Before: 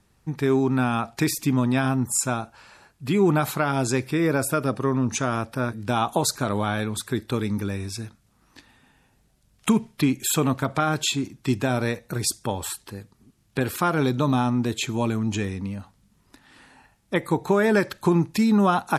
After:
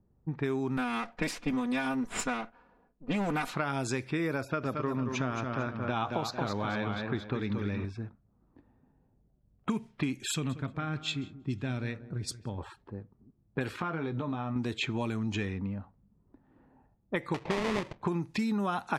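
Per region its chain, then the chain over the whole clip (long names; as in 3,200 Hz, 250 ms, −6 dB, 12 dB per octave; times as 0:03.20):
0:00.77–0:03.54: lower of the sound and its delayed copy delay 4.1 ms + parametric band 90 Hz −8.5 dB
0:04.41–0:07.85: moving average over 5 samples + feedback echo with a swinging delay time 225 ms, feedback 34%, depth 58 cents, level −6 dB
0:10.31–0:12.58: parametric band 800 Hz −13.5 dB 2.7 octaves + repeating echo 183 ms, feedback 39%, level −15 dB
0:13.69–0:14.56: high-pass filter 57 Hz + downward compressor 10 to 1, threshold −24 dBFS + double-tracking delay 18 ms −8 dB
0:17.34–0:18.02: sample-rate reduction 1,500 Hz, jitter 20% + high-frequency loss of the air 77 metres
whole clip: low-pass that shuts in the quiet parts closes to 520 Hz, open at −18 dBFS; downward compressor, threshold −24 dBFS; dynamic equaliser 2,200 Hz, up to +4 dB, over −43 dBFS, Q 0.98; level −4 dB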